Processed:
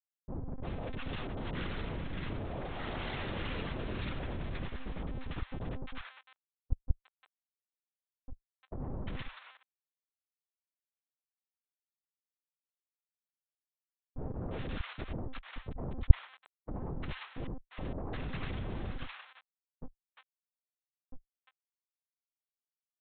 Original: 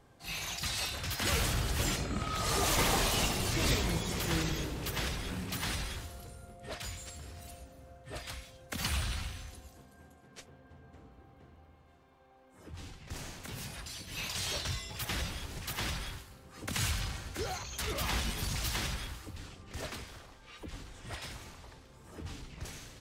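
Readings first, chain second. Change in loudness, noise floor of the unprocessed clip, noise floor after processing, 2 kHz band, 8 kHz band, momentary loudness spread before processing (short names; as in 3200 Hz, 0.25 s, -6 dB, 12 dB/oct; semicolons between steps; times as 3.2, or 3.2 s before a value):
-5.0 dB, -59 dBFS, under -85 dBFS, -8.5 dB, under -40 dB, 19 LU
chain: Schmitt trigger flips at -31 dBFS; monotone LPC vocoder at 8 kHz 260 Hz; bands offset in time lows, highs 0.35 s, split 990 Hz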